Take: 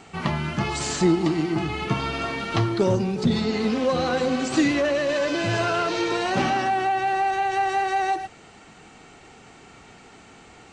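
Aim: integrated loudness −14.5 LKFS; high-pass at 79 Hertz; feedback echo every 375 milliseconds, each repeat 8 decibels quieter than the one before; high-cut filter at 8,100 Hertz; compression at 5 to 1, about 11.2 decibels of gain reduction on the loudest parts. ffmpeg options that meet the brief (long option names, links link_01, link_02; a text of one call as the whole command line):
ffmpeg -i in.wav -af "highpass=79,lowpass=8100,acompressor=threshold=-28dB:ratio=5,aecho=1:1:375|750|1125|1500|1875:0.398|0.159|0.0637|0.0255|0.0102,volume=15.5dB" out.wav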